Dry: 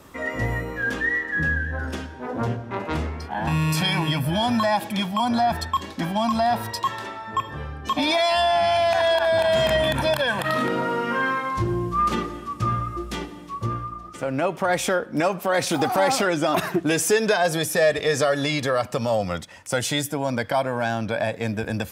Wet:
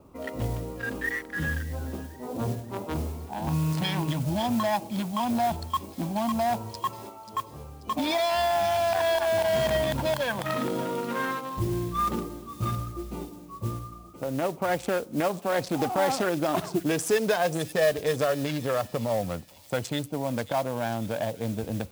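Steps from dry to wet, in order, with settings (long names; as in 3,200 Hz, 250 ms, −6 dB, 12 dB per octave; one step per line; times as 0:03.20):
adaptive Wiener filter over 25 samples
0:07.09–0:07.88: low-shelf EQ 400 Hz −6.5 dB
noise that follows the level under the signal 19 dB
delay with a high-pass on its return 536 ms, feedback 41%, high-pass 3,600 Hz, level −9.5 dB
level −3.5 dB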